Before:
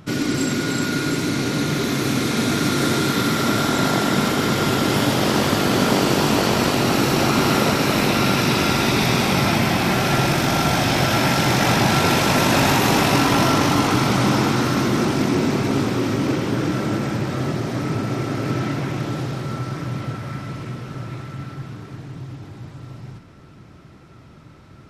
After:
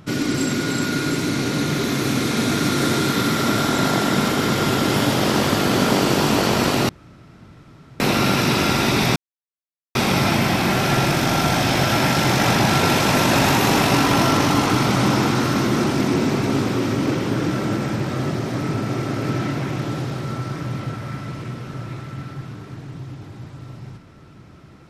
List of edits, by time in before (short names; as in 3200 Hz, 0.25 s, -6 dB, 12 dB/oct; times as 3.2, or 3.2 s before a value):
6.89–8 room tone
9.16 insert silence 0.79 s